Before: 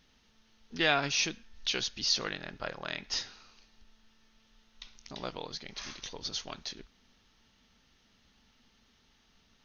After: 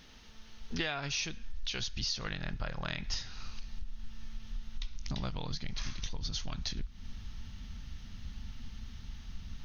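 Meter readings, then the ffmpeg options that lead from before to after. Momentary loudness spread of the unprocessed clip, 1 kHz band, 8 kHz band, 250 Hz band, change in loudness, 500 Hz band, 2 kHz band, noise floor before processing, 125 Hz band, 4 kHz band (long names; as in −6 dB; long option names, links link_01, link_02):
19 LU, −6.5 dB, can't be measured, −0.5 dB, −6.5 dB, −7.5 dB, −6.0 dB, −68 dBFS, +7.5 dB, −4.5 dB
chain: -af "asubboost=boost=12:cutoff=120,acompressor=threshold=-42dB:ratio=10,volume=10dB"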